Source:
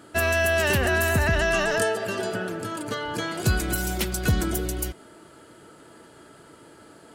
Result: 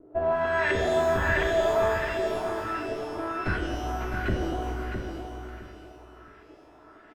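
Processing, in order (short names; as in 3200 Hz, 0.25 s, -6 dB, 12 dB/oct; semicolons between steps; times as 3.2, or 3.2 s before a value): minimum comb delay 2.9 ms; LFO low-pass saw up 1.4 Hz 450–2100 Hz; on a send: feedback echo 0.66 s, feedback 24%, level -7 dB; on the sum: shimmer reverb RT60 1.3 s, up +12 st, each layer -8 dB, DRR 3.5 dB; gain -6 dB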